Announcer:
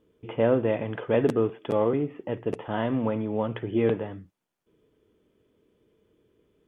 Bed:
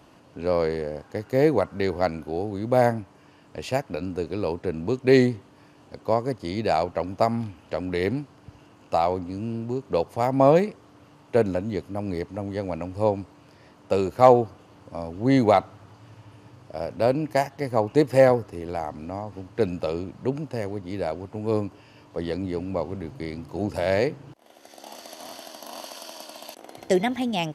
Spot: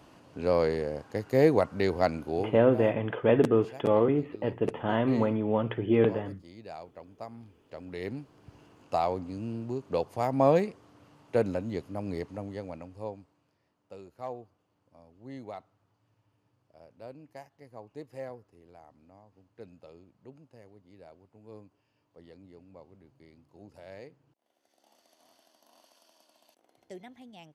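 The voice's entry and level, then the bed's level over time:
2.15 s, +0.5 dB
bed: 0:02.43 −2 dB
0:02.67 −20.5 dB
0:07.30 −20.5 dB
0:08.56 −5.5 dB
0:12.31 −5.5 dB
0:13.67 −24 dB

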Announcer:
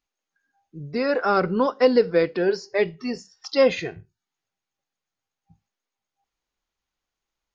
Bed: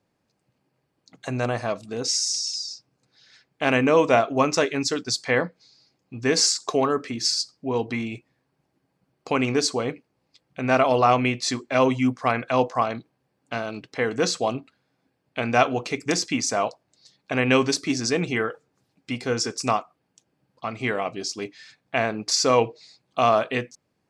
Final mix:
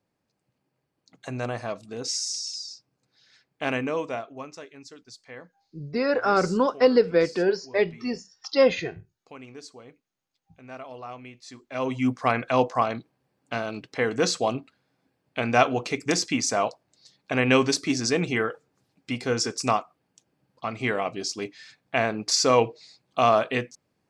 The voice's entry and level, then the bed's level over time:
5.00 s, −1.0 dB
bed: 0:03.64 −5 dB
0:04.59 −21 dB
0:11.42 −21 dB
0:12.11 −0.5 dB

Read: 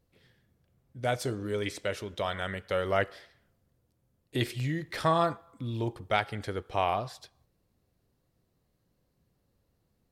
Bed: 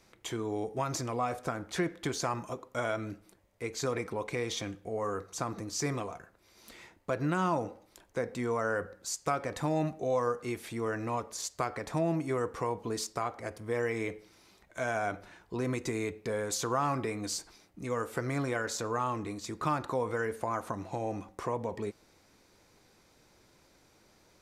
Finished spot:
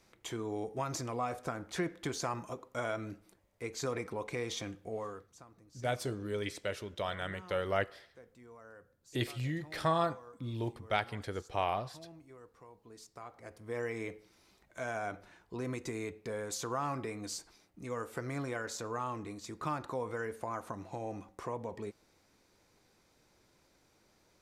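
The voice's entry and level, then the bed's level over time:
4.80 s, −4.5 dB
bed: 0:04.94 −3.5 dB
0:05.47 −23 dB
0:12.72 −23 dB
0:13.78 −5.5 dB

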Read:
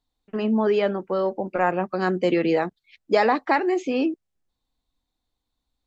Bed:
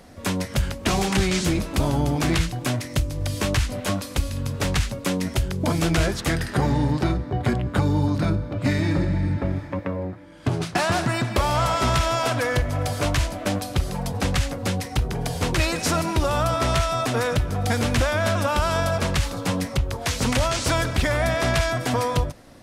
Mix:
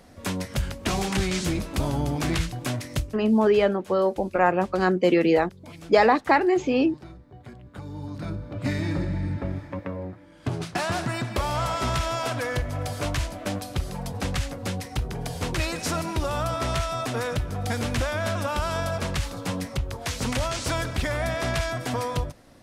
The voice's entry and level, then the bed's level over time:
2.80 s, +1.5 dB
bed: 0:02.99 −4 dB
0:03.20 −21.5 dB
0:07.58 −21.5 dB
0:08.60 −5 dB

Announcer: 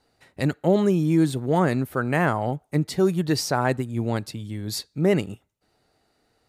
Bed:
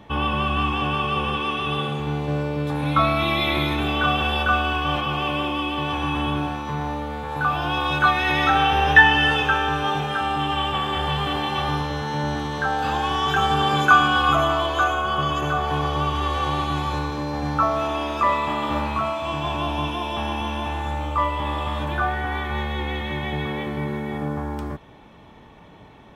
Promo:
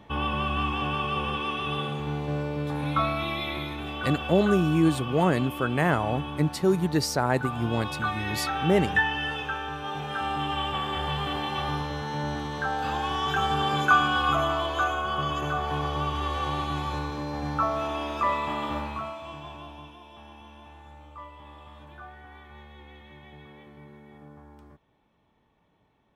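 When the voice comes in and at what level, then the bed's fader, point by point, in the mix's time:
3.65 s, −2.0 dB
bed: 0:02.80 −5 dB
0:03.74 −11.5 dB
0:09.82 −11.5 dB
0:10.24 −5.5 dB
0:18.63 −5.5 dB
0:19.99 −21.5 dB

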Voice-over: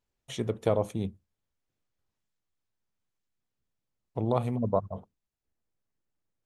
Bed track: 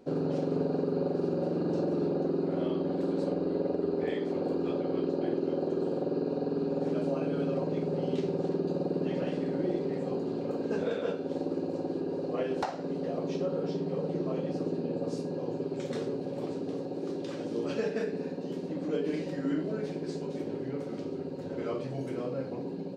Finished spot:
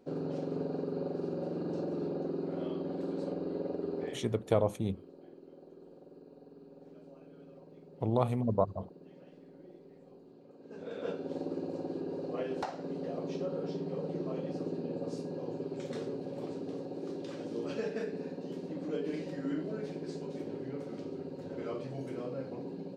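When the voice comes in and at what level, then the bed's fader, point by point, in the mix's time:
3.85 s, −1.5 dB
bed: 0:04.05 −6 dB
0:04.40 −23 dB
0:10.56 −23 dB
0:11.07 −4.5 dB

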